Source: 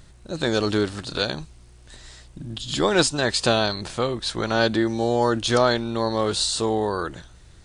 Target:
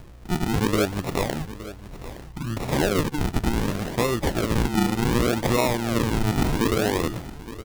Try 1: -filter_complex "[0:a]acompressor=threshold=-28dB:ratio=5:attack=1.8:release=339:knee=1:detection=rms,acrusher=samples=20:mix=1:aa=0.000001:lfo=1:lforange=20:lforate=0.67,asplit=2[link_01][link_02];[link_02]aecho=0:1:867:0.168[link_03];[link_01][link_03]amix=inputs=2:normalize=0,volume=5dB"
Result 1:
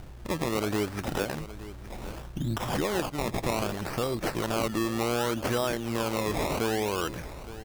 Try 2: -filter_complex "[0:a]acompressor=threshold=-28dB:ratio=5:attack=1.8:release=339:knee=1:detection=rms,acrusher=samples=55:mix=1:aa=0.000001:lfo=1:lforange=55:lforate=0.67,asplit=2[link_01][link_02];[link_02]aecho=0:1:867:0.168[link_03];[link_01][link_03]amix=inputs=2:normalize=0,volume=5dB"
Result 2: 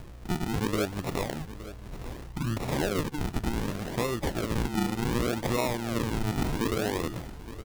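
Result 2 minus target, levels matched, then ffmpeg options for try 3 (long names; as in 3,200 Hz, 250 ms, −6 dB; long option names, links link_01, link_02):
downward compressor: peak gain reduction +6.5 dB
-filter_complex "[0:a]acompressor=threshold=-20dB:ratio=5:attack=1.8:release=339:knee=1:detection=rms,acrusher=samples=55:mix=1:aa=0.000001:lfo=1:lforange=55:lforate=0.67,asplit=2[link_01][link_02];[link_02]aecho=0:1:867:0.168[link_03];[link_01][link_03]amix=inputs=2:normalize=0,volume=5dB"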